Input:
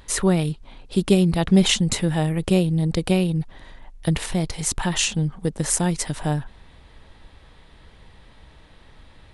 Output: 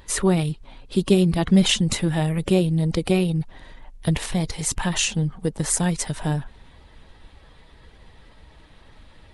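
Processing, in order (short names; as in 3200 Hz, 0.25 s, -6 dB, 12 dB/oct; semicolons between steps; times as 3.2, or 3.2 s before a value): bin magnitudes rounded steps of 15 dB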